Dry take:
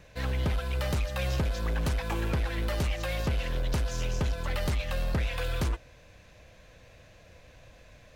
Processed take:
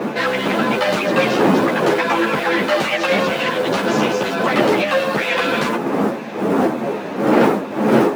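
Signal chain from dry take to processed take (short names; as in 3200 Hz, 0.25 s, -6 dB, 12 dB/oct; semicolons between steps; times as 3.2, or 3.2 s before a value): wind noise 290 Hz -28 dBFS; high shelf 3400 Hz -10.5 dB; in parallel at +1 dB: compressor, threshold -33 dBFS, peak gain reduction 18.5 dB; on the sum: modulation noise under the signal 32 dB; overdrive pedal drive 27 dB, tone 3800 Hz, clips at -4.5 dBFS; HPF 160 Hz 24 dB/oct; ensemble effect; gain +3 dB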